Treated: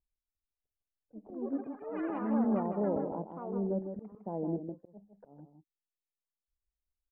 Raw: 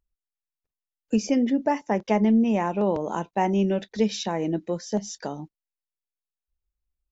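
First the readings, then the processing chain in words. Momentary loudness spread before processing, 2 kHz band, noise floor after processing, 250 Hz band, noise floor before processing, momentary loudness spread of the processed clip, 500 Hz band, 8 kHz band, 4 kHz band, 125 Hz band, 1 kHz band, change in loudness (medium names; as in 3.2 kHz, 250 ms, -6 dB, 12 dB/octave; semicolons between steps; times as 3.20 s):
9 LU, -17.0 dB, under -85 dBFS, -10.5 dB, under -85 dBFS, 15 LU, -10.0 dB, no reading, under -35 dB, -10.0 dB, -13.0 dB, -10.0 dB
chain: inverse Chebyshev low-pass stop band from 3.5 kHz, stop band 70 dB; slow attack 356 ms; ever faster or slower copies 350 ms, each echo +6 st, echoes 3, each echo -6 dB; delay 157 ms -7.5 dB; trim -8 dB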